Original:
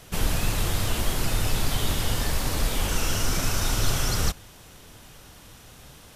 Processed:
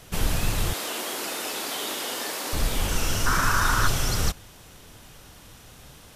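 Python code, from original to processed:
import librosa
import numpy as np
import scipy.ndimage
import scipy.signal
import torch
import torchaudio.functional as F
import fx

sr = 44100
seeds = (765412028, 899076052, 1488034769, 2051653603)

y = fx.highpass(x, sr, hz=290.0, slope=24, at=(0.73, 2.53))
y = fx.band_shelf(y, sr, hz=1300.0, db=13.0, octaves=1.1, at=(3.26, 3.88))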